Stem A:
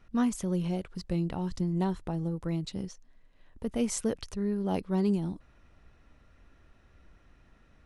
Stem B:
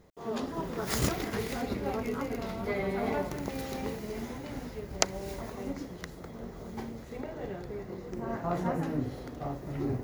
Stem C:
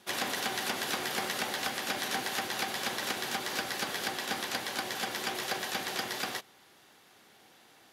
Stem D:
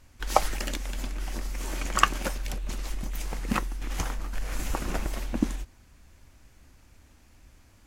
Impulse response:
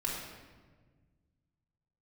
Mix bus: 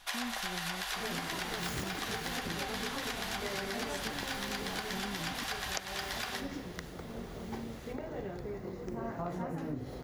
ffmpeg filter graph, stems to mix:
-filter_complex "[0:a]flanger=delay=9.9:depth=4.3:regen=70:speed=1.1:shape=triangular,volume=-3dB[a];[1:a]adelay=750,volume=-0.5dB[b];[2:a]highpass=f=700:w=0.5412,highpass=f=700:w=1.3066,highshelf=f=10k:g=-5,volume=1dB,asplit=2[c][d];[d]volume=-8dB[e];[3:a]volume=-17.5dB[f];[4:a]atrim=start_sample=2205[g];[e][g]afir=irnorm=-1:irlink=0[h];[a][b][c][f][h]amix=inputs=5:normalize=0,acompressor=threshold=-34dB:ratio=6"

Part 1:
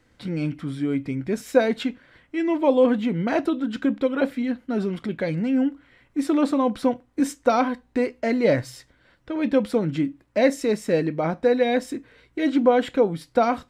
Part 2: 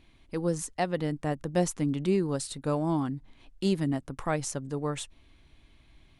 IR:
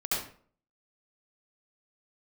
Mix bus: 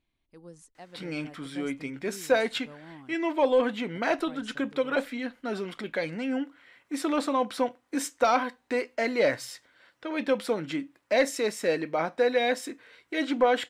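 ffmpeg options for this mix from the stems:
-filter_complex "[0:a]highpass=f=790:p=1,adelay=750,volume=2dB[a];[1:a]volume=-18.5dB,asplit=3[b][c][d];[b]atrim=end=3.14,asetpts=PTS-STARTPTS,afade=t=out:st=3.136:d=0.004:c=hsin[e];[c]atrim=start=3.14:end=3.95,asetpts=PTS-STARTPTS,volume=0[f];[d]atrim=start=3.95,asetpts=PTS-STARTPTS,afade=t=in:d=0.004:c=hsin[g];[e][f][g]concat=n=3:v=0:a=1[h];[a][h]amix=inputs=2:normalize=0,lowshelf=f=190:g=-3,asoftclip=type=tanh:threshold=-11.5dB"

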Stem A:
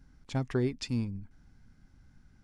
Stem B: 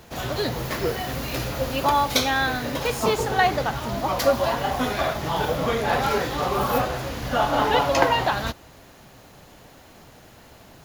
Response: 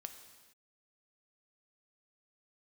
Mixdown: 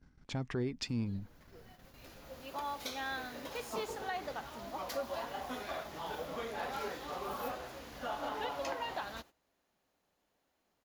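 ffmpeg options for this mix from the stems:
-filter_complex "[0:a]adynamicsmooth=sensitivity=3.5:basefreq=7.4k,volume=2.5dB,asplit=2[a][b];[1:a]equalizer=f=120:t=o:w=0.83:g=-10.5,adelay=700,volume=-16dB[c];[b]apad=whole_len=509159[d];[c][d]sidechaincompress=threshold=-45dB:ratio=16:attack=16:release=1320[e];[a][e]amix=inputs=2:normalize=0,agate=range=-14dB:threshold=-54dB:ratio=16:detection=peak,lowshelf=f=70:g=-8,alimiter=level_in=3.5dB:limit=-24dB:level=0:latency=1:release=143,volume=-3.5dB"

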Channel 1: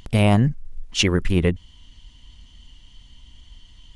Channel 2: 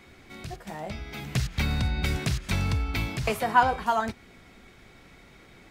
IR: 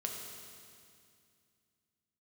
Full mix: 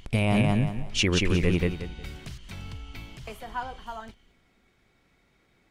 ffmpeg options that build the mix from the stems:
-filter_complex "[0:a]equalizer=f=2.4k:t=o:w=0.26:g=6.5,volume=-3.5dB,asplit=2[a][b];[b]volume=-3dB[c];[1:a]volume=-13.5dB[d];[c]aecho=0:1:180|360|540|720:1|0.27|0.0729|0.0197[e];[a][d][e]amix=inputs=3:normalize=0,alimiter=limit=-13dB:level=0:latency=1:release=38"

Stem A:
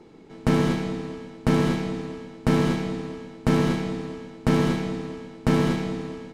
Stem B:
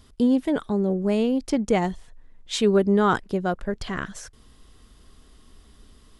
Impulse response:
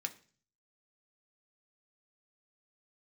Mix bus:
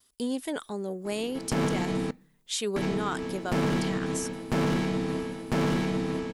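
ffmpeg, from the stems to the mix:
-filter_complex "[0:a]aeval=exprs='0.335*sin(PI/2*2*val(0)/0.335)':c=same,adelay=1050,volume=-7dB,asplit=3[a][b][c];[a]atrim=end=2.11,asetpts=PTS-STARTPTS,afade=t=out:st=2.106:d=0.004:c=hsin[d];[b]atrim=start=2.11:end=2.76,asetpts=PTS-STARTPTS,volume=0[e];[c]atrim=start=2.76,asetpts=PTS-STARTPTS,afade=t=in:d=0.004:c=hsin[f];[d][e][f]concat=n=3:v=0:a=1,asplit=2[g][h];[h]volume=-10.5dB[i];[1:a]agate=range=-33dB:threshold=-46dB:ratio=3:detection=peak,aemphasis=mode=production:type=riaa,volume=-5dB[j];[2:a]atrim=start_sample=2205[k];[i][k]afir=irnorm=-1:irlink=0[l];[g][j][l]amix=inputs=3:normalize=0,alimiter=limit=-20.5dB:level=0:latency=1:release=75"

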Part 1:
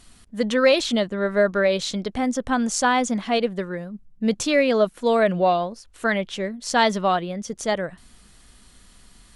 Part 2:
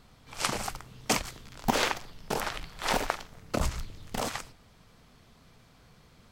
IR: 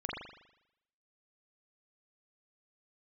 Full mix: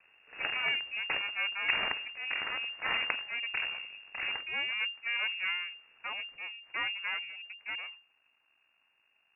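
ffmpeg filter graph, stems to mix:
-filter_complex "[0:a]lowpass=f=1.8k:p=1,volume=-11.5dB[a];[1:a]volume=-1dB[b];[a][b]amix=inputs=2:normalize=0,highpass=74,aeval=exprs='max(val(0),0)':c=same,lowpass=f=2.4k:t=q:w=0.5098,lowpass=f=2.4k:t=q:w=0.6013,lowpass=f=2.4k:t=q:w=0.9,lowpass=f=2.4k:t=q:w=2.563,afreqshift=-2800"

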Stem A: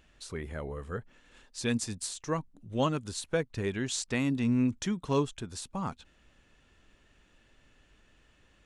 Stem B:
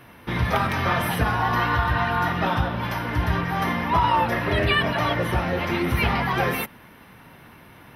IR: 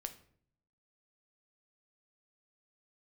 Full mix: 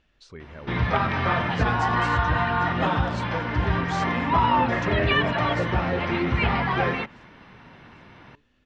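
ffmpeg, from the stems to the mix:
-filter_complex "[0:a]volume=-4dB,asplit=2[a][b];[b]volume=-16.5dB[c];[1:a]acrossover=split=4000[d][e];[e]acompressor=threshold=-50dB:ratio=4:attack=1:release=60[f];[d][f]amix=inputs=2:normalize=0,adelay=400,volume=-0.5dB[g];[c]aecho=0:1:795|1590|2385|3180|3975|4770:1|0.46|0.212|0.0973|0.0448|0.0206[h];[a][g][h]amix=inputs=3:normalize=0,lowpass=f=5.6k:w=0.5412,lowpass=f=5.6k:w=1.3066"

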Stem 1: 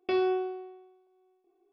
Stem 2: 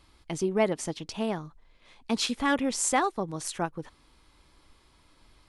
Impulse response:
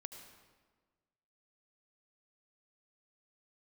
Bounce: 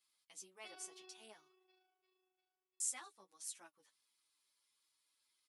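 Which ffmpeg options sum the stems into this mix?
-filter_complex "[0:a]tremolo=f=27:d=0.621,adelay=550,volume=-2.5dB,asplit=2[a][b];[b]volume=-12.5dB[c];[1:a]flanger=delay=8.3:depth=2.4:regen=31:speed=1.7:shape=sinusoidal,volume=-4.5dB,asplit=3[d][e][f];[d]atrim=end=1.64,asetpts=PTS-STARTPTS,afade=t=out:st=1.636:d=0.004:c=hsin[g];[e]atrim=start=1.64:end=2.8,asetpts=PTS-STARTPTS,volume=0[h];[f]atrim=start=2.8,asetpts=PTS-STARTPTS,afade=t=in:d=0.004:c=hsin[i];[g][h][i]concat=n=3:v=0:a=1[j];[c]aecho=0:1:347|694|1041|1388|1735|2082|2429|2776:1|0.52|0.27|0.141|0.0731|0.038|0.0198|0.0103[k];[a][j][k]amix=inputs=3:normalize=0,aderivative,asplit=2[l][m];[m]adelay=8.8,afreqshift=-1.7[n];[l][n]amix=inputs=2:normalize=1"

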